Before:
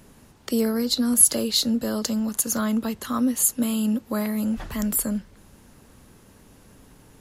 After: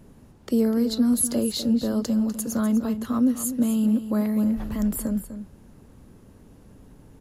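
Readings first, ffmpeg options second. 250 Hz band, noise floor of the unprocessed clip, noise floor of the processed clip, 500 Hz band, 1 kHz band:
+2.5 dB, −53 dBFS, −51 dBFS, 0.0 dB, −4.0 dB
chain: -af "tiltshelf=frequency=840:gain=6,aecho=1:1:249:0.266,volume=-3dB"

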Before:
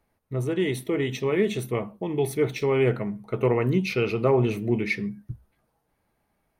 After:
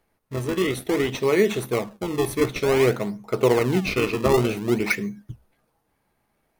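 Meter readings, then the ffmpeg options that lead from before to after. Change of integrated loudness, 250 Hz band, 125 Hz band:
+2.5 dB, +2.0 dB, −1.0 dB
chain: -filter_complex "[0:a]equalizer=frequency=64:width=0.3:gain=-10.5,asplit=2[link_01][link_02];[link_02]acrusher=samples=34:mix=1:aa=0.000001:lfo=1:lforange=54.4:lforate=0.54,volume=-4.5dB[link_03];[link_01][link_03]amix=inputs=2:normalize=0,volume=3dB"

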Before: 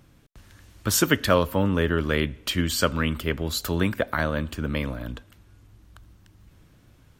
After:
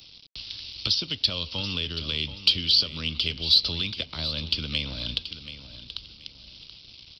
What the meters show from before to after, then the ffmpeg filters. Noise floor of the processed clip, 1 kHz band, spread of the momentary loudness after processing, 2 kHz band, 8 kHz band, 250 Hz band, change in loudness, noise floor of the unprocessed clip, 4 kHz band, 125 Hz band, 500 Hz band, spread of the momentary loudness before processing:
−50 dBFS, −16.5 dB, 23 LU, −7.5 dB, −15.0 dB, −12.5 dB, 0.0 dB, −56 dBFS, +10.0 dB, −8.5 dB, −16.5 dB, 10 LU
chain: -filter_complex "[0:a]alimiter=limit=-16dB:level=0:latency=1:release=467,acrossover=split=170|930[link_01][link_02][link_03];[link_01]acompressor=threshold=-34dB:ratio=4[link_04];[link_02]acompressor=threshold=-41dB:ratio=4[link_05];[link_03]acompressor=threshold=-45dB:ratio=4[link_06];[link_04][link_05][link_06]amix=inputs=3:normalize=0,aresample=11025,aeval=exprs='sgn(val(0))*max(abs(val(0))-0.00119,0)':channel_layout=same,aresample=44100,aexciter=amount=14.7:drive=9.2:freq=2800,aecho=1:1:730|1460|2190:0.237|0.0617|0.016"

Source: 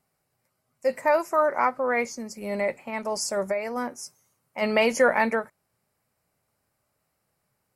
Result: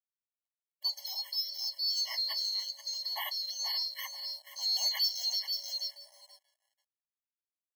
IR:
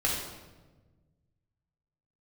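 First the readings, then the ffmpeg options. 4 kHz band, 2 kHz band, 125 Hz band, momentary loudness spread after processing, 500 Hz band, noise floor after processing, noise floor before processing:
+11.0 dB, −18.0 dB, can't be measured, 9 LU, −35.0 dB, below −85 dBFS, −77 dBFS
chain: -filter_complex "[0:a]afftfilt=real='real(if(lt(b,736),b+184*(1-2*mod(floor(b/184),2)),b),0)':imag='imag(if(lt(b,736),b+184*(1-2*mod(floor(b/184),2)),b),0)':win_size=2048:overlap=0.75,aeval=exprs='val(0)+0.002*sin(2*PI*570*n/s)':channel_layout=same,acrossover=split=550|2200[link_01][link_02][link_03];[link_03]asoftclip=type=tanh:threshold=-21.5dB[link_04];[link_01][link_02][link_04]amix=inputs=3:normalize=0,highpass=frequency=140:width=0.5412,highpass=frequency=140:width=1.3066,aecho=1:1:482|964|1446:0.299|0.0597|0.0119,aeval=exprs='sgn(val(0))*max(abs(val(0))-0.00251,0)':channel_layout=same,alimiter=level_in=4dB:limit=-24dB:level=0:latency=1:release=216,volume=-4dB,afftfilt=real='re*eq(mod(floor(b*sr/1024/560),2),1)':imag='im*eq(mod(floor(b*sr/1024/560),2),1)':win_size=1024:overlap=0.75,volume=5dB"

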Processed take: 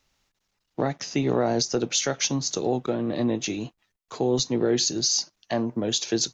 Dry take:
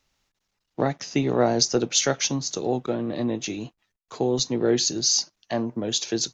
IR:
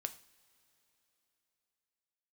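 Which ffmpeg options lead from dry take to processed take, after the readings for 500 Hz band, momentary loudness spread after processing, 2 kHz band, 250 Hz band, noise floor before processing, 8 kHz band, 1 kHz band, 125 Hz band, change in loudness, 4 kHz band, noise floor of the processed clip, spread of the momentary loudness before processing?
−1.0 dB, 7 LU, −1.0 dB, 0.0 dB, −80 dBFS, can't be measured, −1.5 dB, −0.5 dB, −1.0 dB, −1.5 dB, −78 dBFS, 9 LU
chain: -af "alimiter=limit=-14.5dB:level=0:latency=1:release=172,volume=1.5dB"

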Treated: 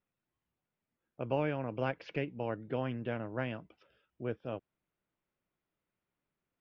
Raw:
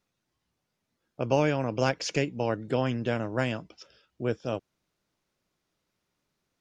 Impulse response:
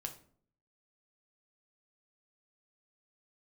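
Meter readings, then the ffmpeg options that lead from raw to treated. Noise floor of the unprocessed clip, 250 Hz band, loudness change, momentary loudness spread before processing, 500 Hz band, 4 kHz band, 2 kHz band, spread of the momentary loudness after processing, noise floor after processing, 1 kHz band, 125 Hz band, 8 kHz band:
−82 dBFS, −8.0 dB, −8.0 dB, 9 LU, −8.0 dB, −13.5 dB, −8.5 dB, 9 LU, below −85 dBFS, −8.0 dB, −8.0 dB, below −30 dB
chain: -af "lowpass=frequency=3000:width=0.5412,lowpass=frequency=3000:width=1.3066,volume=-8dB"

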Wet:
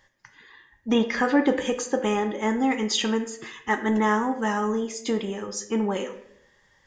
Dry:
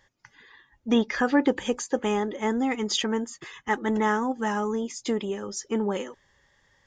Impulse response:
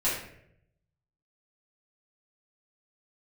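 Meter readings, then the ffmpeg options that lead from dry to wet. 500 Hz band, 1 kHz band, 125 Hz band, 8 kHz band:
+1.5 dB, +2.0 dB, can't be measured, +2.0 dB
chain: -filter_complex "[0:a]asplit=2[link_01][link_02];[1:a]atrim=start_sample=2205,lowshelf=frequency=230:gain=-9.5[link_03];[link_02][link_03]afir=irnorm=-1:irlink=0,volume=-13.5dB[link_04];[link_01][link_04]amix=inputs=2:normalize=0"

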